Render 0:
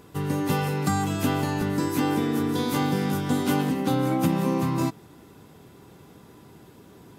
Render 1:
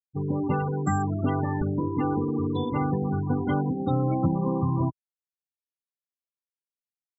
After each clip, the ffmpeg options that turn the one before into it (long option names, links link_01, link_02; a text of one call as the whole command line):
ffmpeg -i in.wav -af "afftfilt=real='re*gte(hypot(re,im),0.0794)':imag='im*gte(hypot(re,im),0.0794)':win_size=1024:overlap=0.75,asubboost=boost=6:cutoff=91" out.wav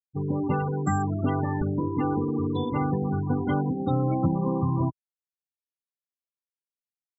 ffmpeg -i in.wav -af anull out.wav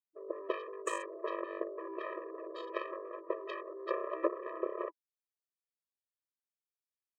ffmpeg -i in.wav -af "aeval=exprs='0.237*(cos(1*acos(clip(val(0)/0.237,-1,1)))-cos(1*PI/2))+0.106*(cos(3*acos(clip(val(0)/0.237,-1,1)))-cos(3*PI/2))+0.00531*(cos(6*acos(clip(val(0)/0.237,-1,1)))-cos(6*PI/2))+0.00668*(cos(8*acos(clip(val(0)/0.237,-1,1)))-cos(8*PI/2))':channel_layout=same,afftfilt=real='re*eq(mod(floor(b*sr/1024/330),2),1)':imag='im*eq(mod(floor(b*sr/1024/330),2),1)':win_size=1024:overlap=0.75,volume=2.5dB" out.wav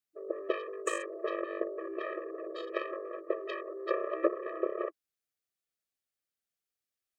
ffmpeg -i in.wav -af "asuperstop=centerf=950:order=8:qfactor=3.2,volume=4dB" out.wav